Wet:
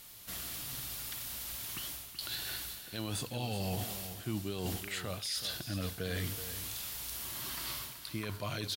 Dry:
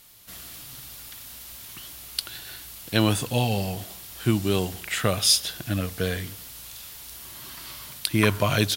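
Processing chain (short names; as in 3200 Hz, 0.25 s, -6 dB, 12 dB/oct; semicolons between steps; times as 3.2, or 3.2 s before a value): dynamic EQ 4300 Hz, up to +7 dB, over -45 dBFS, Q 3.7; reverse; compressor 12:1, threshold -31 dBFS, peak gain reduction 19.5 dB; reverse; limiter -26.5 dBFS, peak gain reduction 10.5 dB; echo 0.378 s -11 dB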